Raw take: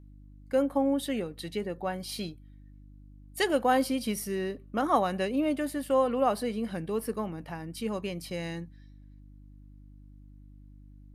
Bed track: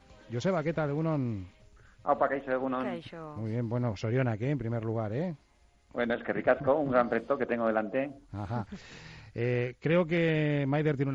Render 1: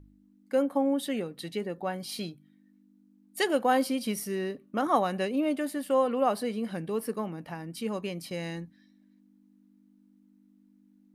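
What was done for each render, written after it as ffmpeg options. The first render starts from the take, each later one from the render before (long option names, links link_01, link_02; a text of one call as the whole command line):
ffmpeg -i in.wav -af "bandreject=frequency=50:width_type=h:width=4,bandreject=frequency=100:width_type=h:width=4,bandreject=frequency=150:width_type=h:width=4" out.wav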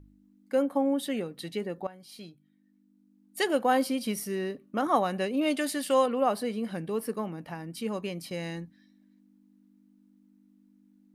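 ffmpeg -i in.wav -filter_complex "[0:a]asettb=1/sr,asplit=3[link_01][link_02][link_03];[link_01]atrim=end=5.414[link_04];[link_02]atrim=start=5.41:end=6.06,asetpts=PTS-STARTPTS,afade=type=in:duration=0.004:curve=qsin,afade=type=out:start_time=0.646:duration=0.004:curve=qsin,equalizer=frequency=5100:width_type=o:width=2.7:gain=12[link_05];[link_03]atrim=start=6.056[link_06];[link_04][link_05]acrossfade=duration=0.004:curve1=hsin:curve2=qsin[link_07];[link_07][link_06]acrossfade=duration=0.004:curve1=qsin:curve2=hsin,asplit=2[link_08][link_09];[link_08]atrim=end=1.87,asetpts=PTS-STARTPTS,afade=type=out:start_time=1.866:duration=0.004:curve=hsin:silence=0.149624[link_10];[link_09]atrim=start=1.87,asetpts=PTS-STARTPTS,afade=type=in:duration=1.65:silence=0.149624[link_11];[link_10][link_11]concat=n=2:v=0:a=1" out.wav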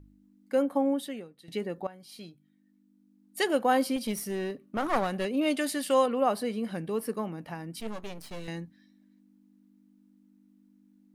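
ffmpeg -i in.wav -filter_complex "[0:a]asettb=1/sr,asplit=3[link_01][link_02][link_03];[link_01]atrim=end=3.964[link_04];[link_02]atrim=start=3.96:end=5.25,asetpts=PTS-STARTPTS,afade=type=in:duration=0.004:curve=qsin,afade=type=out:start_time=1.286:duration=0.004:curve=qsin,aeval=exprs='clip(val(0),-1,0.0251)':channel_layout=same[link_05];[link_03]atrim=start=5.246[link_06];[link_04][link_05]acrossfade=duration=0.004:curve1=hsin:curve2=qsin[link_07];[link_07][link_06]acrossfade=duration=0.004:curve1=qsin:curve2=hsin,asettb=1/sr,asplit=3[link_08][link_09][link_10];[link_08]atrim=end=7.804[link_11];[link_09]atrim=start=7.8:end=8.48,asetpts=PTS-STARTPTS,afade=type=in:duration=0.004:curve=qsin,afade=type=out:start_time=0.676:duration=0.004:curve=qsin,aeval=exprs='max(val(0),0)':channel_layout=same[link_12];[link_10]atrim=start=8.476[link_13];[link_11][link_12]acrossfade=duration=0.004:curve1=hsin:curve2=qsin[link_14];[link_14][link_13]acrossfade=duration=0.004:curve1=qsin:curve2=hsin,asplit=2[link_15][link_16];[link_15]atrim=end=1.48,asetpts=PTS-STARTPTS,afade=type=out:start_time=0.9:duration=0.58:curve=qua:silence=0.158489[link_17];[link_16]atrim=start=1.48,asetpts=PTS-STARTPTS,afade=type=in:duration=0.004:curve=hsin:silence=0.158489[link_18];[link_17][link_18]concat=n=2:v=0:a=1" out.wav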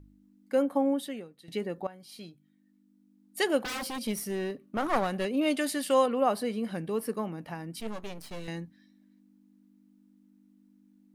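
ffmpeg -i in.wav -filter_complex "[0:a]asettb=1/sr,asplit=3[link_01][link_02][link_03];[link_01]atrim=end=3.624[link_04];[link_02]atrim=start=3.62:end=4.04,asetpts=PTS-STARTPTS,afade=type=in:duration=0.004:curve=qsin,afade=type=out:start_time=0.416:duration=0.004:curve=qsin,aeval=exprs='0.0316*(abs(mod(val(0)/0.0316+3,4)-2)-1)':channel_layout=same[link_05];[link_03]atrim=start=4.036[link_06];[link_04][link_05]acrossfade=duration=0.004:curve1=hsin:curve2=qsin[link_07];[link_07][link_06]acrossfade=duration=0.004:curve1=qsin:curve2=hsin" out.wav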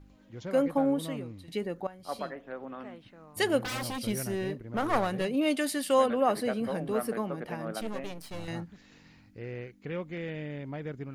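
ffmpeg -i in.wav -i bed.wav -filter_complex "[1:a]volume=-10dB[link_01];[0:a][link_01]amix=inputs=2:normalize=0" out.wav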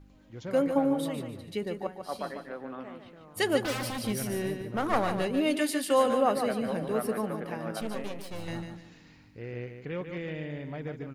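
ffmpeg -i in.wav -af "aecho=1:1:147|294|441|588:0.422|0.131|0.0405|0.0126" out.wav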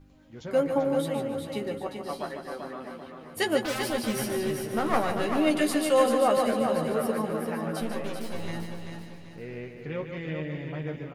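ffmpeg -i in.wav -filter_complex "[0:a]asplit=2[link_01][link_02];[link_02]adelay=13,volume=-5.5dB[link_03];[link_01][link_03]amix=inputs=2:normalize=0,aecho=1:1:389|778|1167|1556|1945:0.501|0.195|0.0762|0.0297|0.0116" out.wav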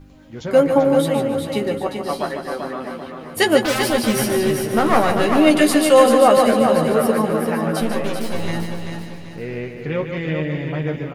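ffmpeg -i in.wav -af "volume=10.5dB,alimiter=limit=-1dB:level=0:latency=1" out.wav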